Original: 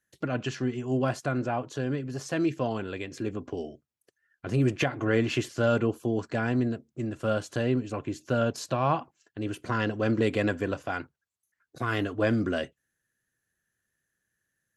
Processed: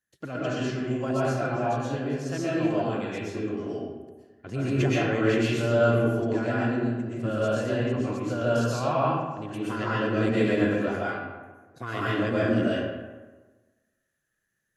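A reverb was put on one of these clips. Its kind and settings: algorithmic reverb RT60 1.3 s, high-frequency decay 0.55×, pre-delay 85 ms, DRR -8 dB; trim -6 dB

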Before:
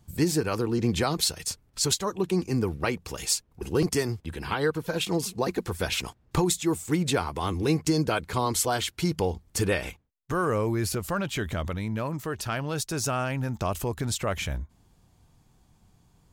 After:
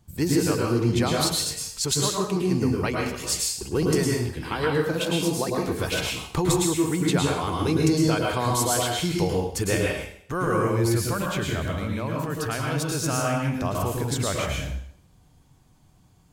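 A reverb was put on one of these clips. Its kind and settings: plate-style reverb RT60 0.62 s, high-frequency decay 1×, pre-delay 95 ms, DRR -1.5 dB; trim -1 dB

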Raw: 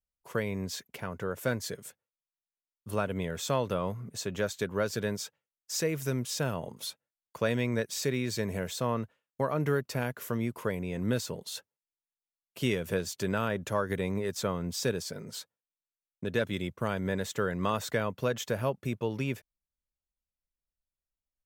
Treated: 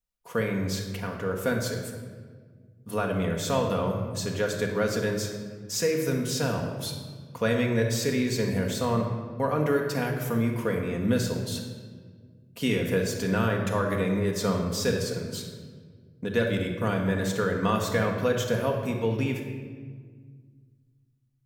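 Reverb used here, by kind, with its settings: simulated room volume 1900 m³, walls mixed, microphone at 1.8 m; trim +1.5 dB

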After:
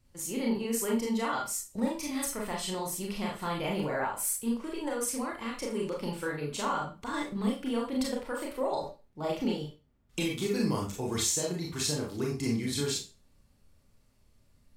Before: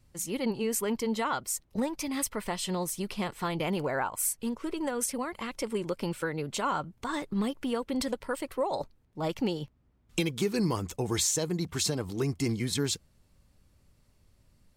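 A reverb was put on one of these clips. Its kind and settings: Schroeder reverb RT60 0.3 s, combs from 27 ms, DRR -2 dB; trim -5 dB

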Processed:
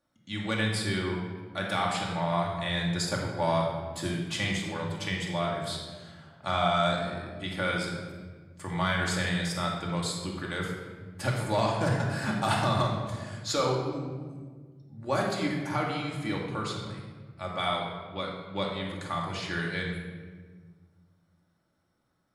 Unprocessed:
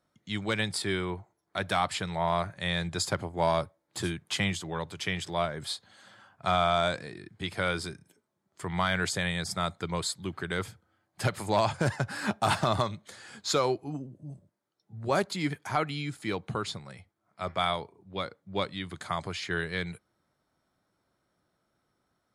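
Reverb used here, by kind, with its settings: simulated room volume 1500 m³, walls mixed, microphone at 2.4 m; trim -4 dB

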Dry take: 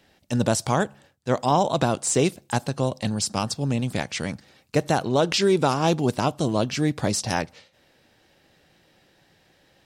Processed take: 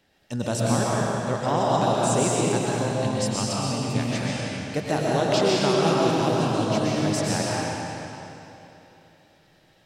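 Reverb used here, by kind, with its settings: algorithmic reverb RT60 3.1 s, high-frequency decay 0.9×, pre-delay 85 ms, DRR -5.5 dB; trim -6 dB

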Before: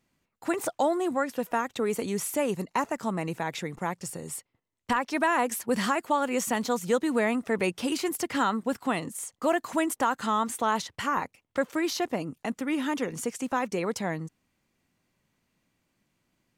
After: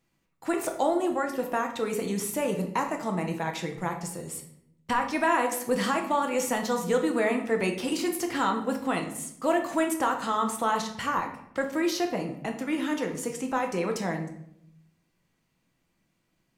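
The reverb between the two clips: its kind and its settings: simulated room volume 160 m³, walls mixed, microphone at 0.68 m; trim -1.5 dB

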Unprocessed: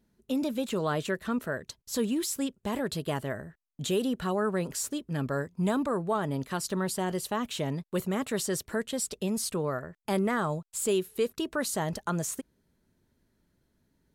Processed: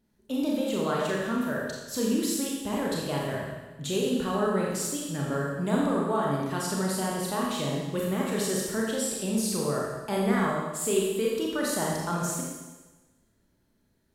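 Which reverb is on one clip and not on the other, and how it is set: Schroeder reverb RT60 1.2 s, combs from 28 ms, DRR -3.5 dB; trim -2.5 dB

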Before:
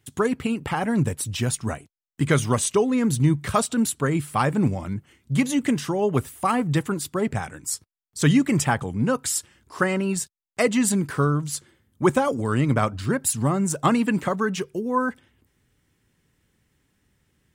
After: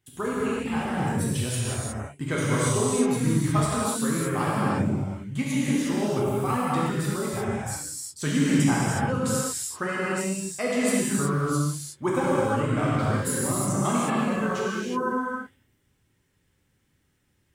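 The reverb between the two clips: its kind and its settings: gated-style reverb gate 390 ms flat, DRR -7.5 dB; trim -10 dB

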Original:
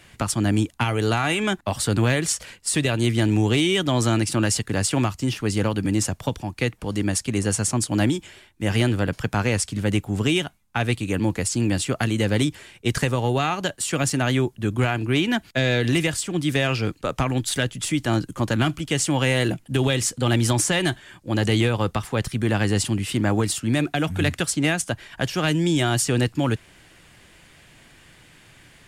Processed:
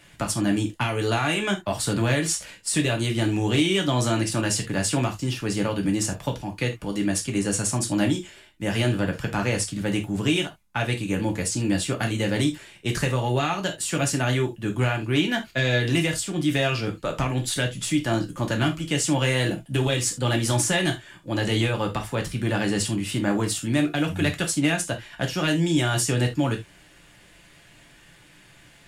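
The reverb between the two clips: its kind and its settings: gated-style reverb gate 100 ms falling, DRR 2 dB; trim -3.5 dB

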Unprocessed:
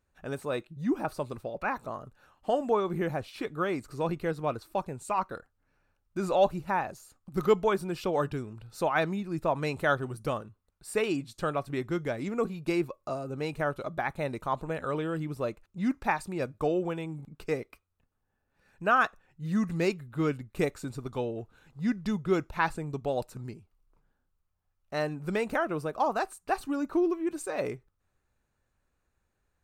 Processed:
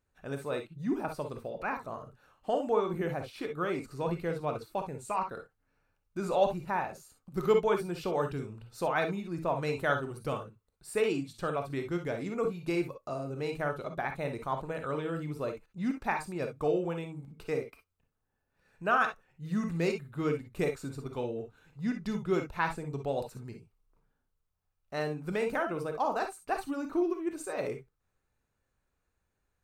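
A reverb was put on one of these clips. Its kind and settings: gated-style reverb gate 80 ms rising, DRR 5 dB; trim -3.5 dB

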